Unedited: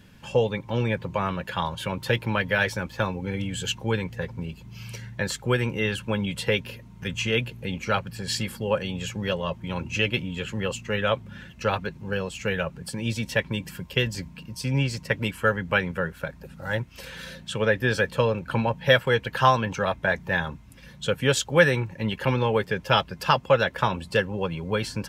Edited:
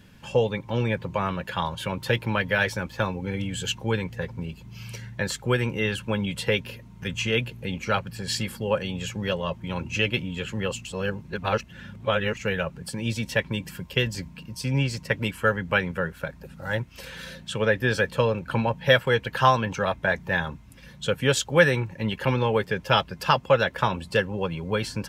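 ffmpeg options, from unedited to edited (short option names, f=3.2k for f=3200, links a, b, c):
-filter_complex "[0:a]asplit=3[a][b][c];[a]atrim=end=10.852[d];[b]atrim=start=10.848:end=12.372,asetpts=PTS-STARTPTS,areverse[e];[c]atrim=start=12.368[f];[d][e]acrossfade=d=0.004:c1=hsin:c2=hsin[g];[g][f]acrossfade=d=0.004:c1=hsin:c2=hsin"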